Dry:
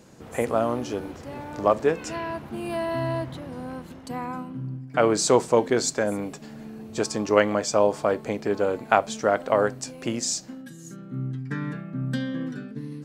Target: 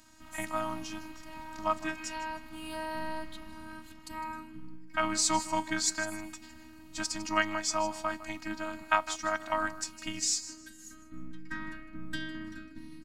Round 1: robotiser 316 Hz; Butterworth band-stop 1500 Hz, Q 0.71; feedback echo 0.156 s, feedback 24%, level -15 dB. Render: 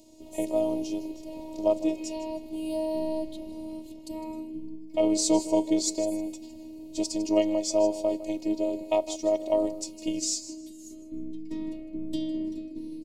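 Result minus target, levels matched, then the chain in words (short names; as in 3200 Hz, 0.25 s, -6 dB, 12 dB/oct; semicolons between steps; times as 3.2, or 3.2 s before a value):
2000 Hz band -19.5 dB
robotiser 316 Hz; Butterworth band-stop 450 Hz, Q 0.71; feedback echo 0.156 s, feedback 24%, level -15 dB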